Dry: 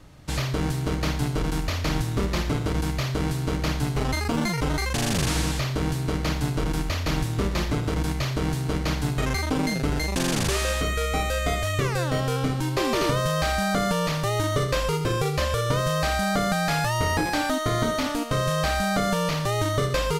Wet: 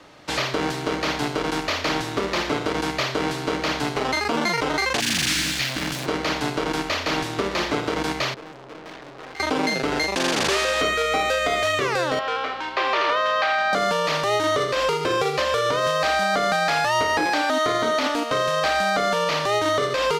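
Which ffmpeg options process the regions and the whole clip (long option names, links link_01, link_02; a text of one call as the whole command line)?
ffmpeg -i in.wav -filter_complex "[0:a]asettb=1/sr,asplit=3[link_01][link_02][link_03];[link_01]atrim=end=5.004[link_04];[link_02]atrim=start=5:end=6.06,asetpts=PTS-STARTPTS,afade=type=in:duration=0.004:curve=qsin,afade=type=out:start_time=1.056:duration=0.004:curve=qsin,asuperstop=centerf=680:order=8:qfactor=0.53,highshelf=frequency=11000:gain=10.5,acrusher=bits=6:dc=4:mix=0:aa=0.000001[link_05];[link_03]atrim=start=6.056[link_06];[link_04][link_05]acrossfade=duration=0.004:curve1=hsin:curve2=qsin[link_07];[link_07][link_06]acrossfade=duration=0.004:curve1=qsin:curve2=hsin,asettb=1/sr,asplit=3[link_08][link_09][link_10];[link_08]atrim=end=8.344[link_11];[link_09]atrim=start=8.34:end=9.4,asetpts=PTS-STARTPTS,afade=type=in:duration=0.004:curve=qsin,afade=type=out:start_time=1.056:duration=0.004:curve=qsin,lowpass=frequency=1500:poles=1,aecho=1:1:6.3:0.4,atrim=end_sample=46746,aeval=exprs='(tanh(126*val(0)+0.7)-tanh(0.7))/126':channel_layout=same[link_12];[link_10]atrim=start=9.396[link_13];[link_11][link_12]acrossfade=duration=0.004:curve1=hsin:curve2=qsin[link_14];[link_14][link_13]acrossfade=duration=0.004:curve1=qsin:curve2=hsin,asettb=1/sr,asplit=3[link_15][link_16][link_17];[link_15]atrim=end=12.194[link_18];[link_16]atrim=start=12.19:end=13.73,asetpts=PTS-STARTPTS,afade=type=in:duration=0.004:curve=qsin,afade=type=out:start_time=1.536:duration=0.004:curve=qsin,highpass=740,lowpass=3100,aeval=exprs='val(0)+0.00708*(sin(2*PI*60*n/s)+sin(2*PI*2*60*n/s)/2+sin(2*PI*3*60*n/s)/3+sin(2*PI*4*60*n/s)/4+sin(2*PI*5*60*n/s)/5)':channel_layout=same[link_19];[link_17]atrim=start=13.726[link_20];[link_18][link_19]acrossfade=duration=0.004:curve1=hsin:curve2=qsin[link_21];[link_21][link_20]acrossfade=duration=0.004:curve1=qsin:curve2=hsin,acrossover=split=290 6000:gain=0.158 1 0.224[link_22][link_23][link_24];[link_22][link_23][link_24]amix=inputs=3:normalize=0,alimiter=limit=-20dB:level=0:latency=1:release=97,lowshelf=frequency=76:gain=-10.5,volume=8.5dB" out.wav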